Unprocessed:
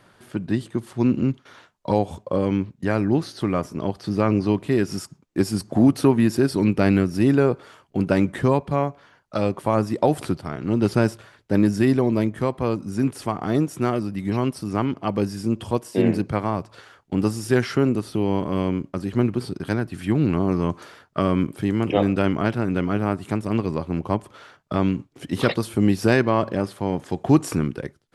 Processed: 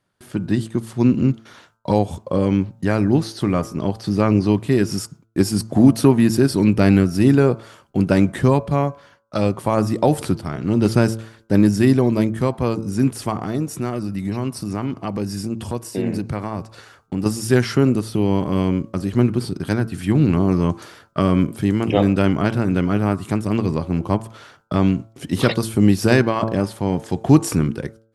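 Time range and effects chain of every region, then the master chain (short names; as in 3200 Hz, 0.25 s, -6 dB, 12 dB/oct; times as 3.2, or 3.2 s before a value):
13.41–17.26 notch 3200 Hz, Q 14 + compressor 2:1, threshold -26 dBFS
whole clip: gate with hold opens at -43 dBFS; tone controls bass +4 dB, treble +5 dB; de-hum 111.8 Hz, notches 14; gain +2 dB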